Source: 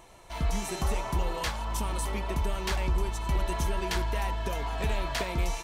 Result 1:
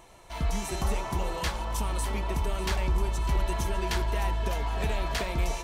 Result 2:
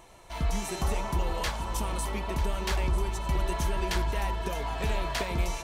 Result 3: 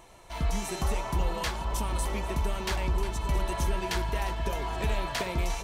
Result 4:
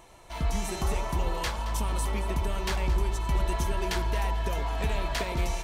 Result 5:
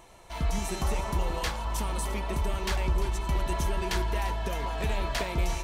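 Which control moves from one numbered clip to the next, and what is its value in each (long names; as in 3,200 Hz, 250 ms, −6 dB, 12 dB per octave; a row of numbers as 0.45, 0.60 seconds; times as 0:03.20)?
delay that swaps between a low-pass and a high-pass, delay time: 300, 472, 795, 111, 172 milliseconds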